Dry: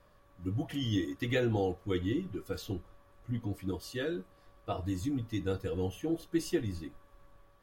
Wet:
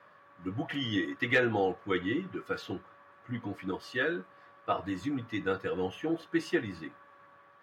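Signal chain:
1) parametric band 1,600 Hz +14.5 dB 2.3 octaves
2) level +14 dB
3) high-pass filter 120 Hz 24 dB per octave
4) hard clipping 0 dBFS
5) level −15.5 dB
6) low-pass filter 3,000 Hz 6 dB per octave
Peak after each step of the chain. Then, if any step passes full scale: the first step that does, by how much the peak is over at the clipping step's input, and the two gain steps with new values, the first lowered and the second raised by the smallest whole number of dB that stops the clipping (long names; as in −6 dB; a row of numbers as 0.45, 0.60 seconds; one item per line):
−10.5, +3.5, +5.0, 0.0, −15.5, −15.5 dBFS
step 2, 5.0 dB
step 2 +9 dB, step 5 −10.5 dB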